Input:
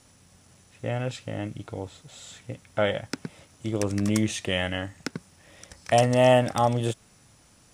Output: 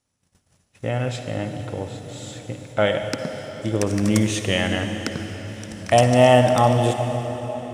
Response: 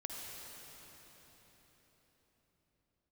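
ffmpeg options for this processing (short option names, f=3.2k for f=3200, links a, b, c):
-filter_complex "[0:a]agate=range=-24dB:threshold=-53dB:ratio=16:detection=peak,asplit=2[a][b];[1:a]atrim=start_sample=2205[c];[b][c]afir=irnorm=-1:irlink=0,volume=1dB[d];[a][d]amix=inputs=2:normalize=0"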